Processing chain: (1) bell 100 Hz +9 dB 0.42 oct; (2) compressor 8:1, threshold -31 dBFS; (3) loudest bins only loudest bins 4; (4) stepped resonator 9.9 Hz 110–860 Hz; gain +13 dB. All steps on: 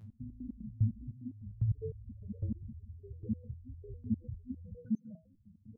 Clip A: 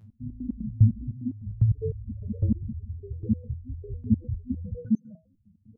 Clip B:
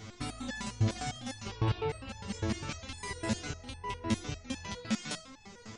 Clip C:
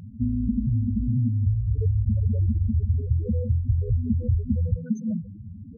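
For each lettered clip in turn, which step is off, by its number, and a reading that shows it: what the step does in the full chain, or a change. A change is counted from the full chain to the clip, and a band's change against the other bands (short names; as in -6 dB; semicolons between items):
2, mean gain reduction 9.0 dB; 3, momentary loudness spread change -5 LU; 4, crest factor change -7.0 dB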